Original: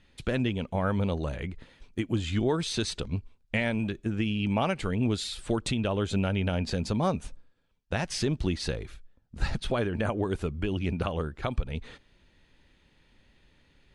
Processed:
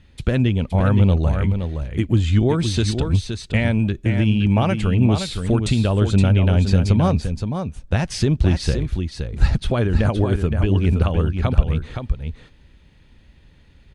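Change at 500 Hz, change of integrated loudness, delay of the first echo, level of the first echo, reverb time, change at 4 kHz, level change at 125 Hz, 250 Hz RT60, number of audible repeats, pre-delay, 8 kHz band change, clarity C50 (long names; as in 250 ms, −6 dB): +7.0 dB, +10.5 dB, 519 ms, −7.0 dB, no reverb audible, +5.5 dB, +14.5 dB, no reverb audible, 1, no reverb audible, +5.5 dB, no reverb audible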